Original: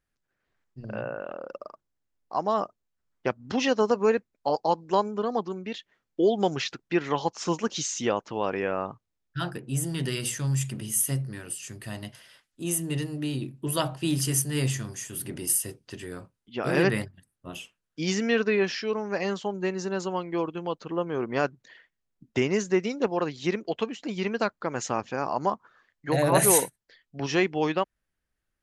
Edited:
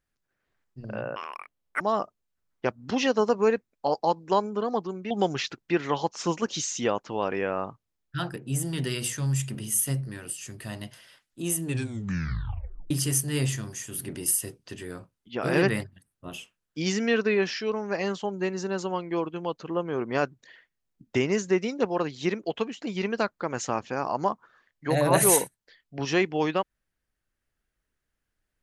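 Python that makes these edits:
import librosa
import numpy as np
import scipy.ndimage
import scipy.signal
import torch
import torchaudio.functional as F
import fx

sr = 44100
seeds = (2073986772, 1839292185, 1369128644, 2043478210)

y = fx.edit(x, sr, fx.speed_span(start_s=1.16, length_s=1.26, speed=1.95),
    fx.cut(start_s=5.72, length_s=0.6),
    fx.tape_stop(start_s=12.86, length_s=1.26), tone=tone)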